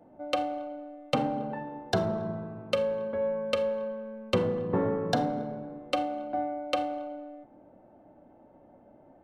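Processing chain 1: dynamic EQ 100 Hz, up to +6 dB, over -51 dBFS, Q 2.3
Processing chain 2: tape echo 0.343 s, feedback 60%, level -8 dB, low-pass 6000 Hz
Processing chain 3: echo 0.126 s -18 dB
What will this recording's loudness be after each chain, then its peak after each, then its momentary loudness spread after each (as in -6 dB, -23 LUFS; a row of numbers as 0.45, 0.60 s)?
-31.0, -30.5, -31.0 LUFS; -12.0, -11.5, -12.0 dBFS; 11, 13, 11 LU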